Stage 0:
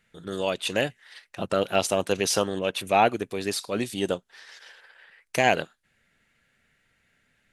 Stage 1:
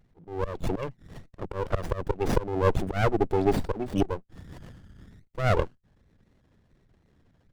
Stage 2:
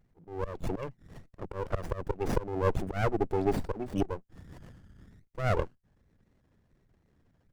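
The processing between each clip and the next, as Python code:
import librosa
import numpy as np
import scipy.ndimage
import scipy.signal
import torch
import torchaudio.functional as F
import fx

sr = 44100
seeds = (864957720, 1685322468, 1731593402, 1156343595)

y1 = fx.envelope_sharpen(x, sr, power=3.0)
y1 = fx.auto_swell(y1, sr, attack_ms=306.0)
y1 = fx.running_max(y1, sr, window=33)
y1 = y1 * librosa.db_to_amplitude(8.5)
y2 = fx.peak_eq(y1, sr, hz=3600.0, db=-3.5, octaves=0.71)
y2 = y2 * librosa.db_to_amplitude(-4.5)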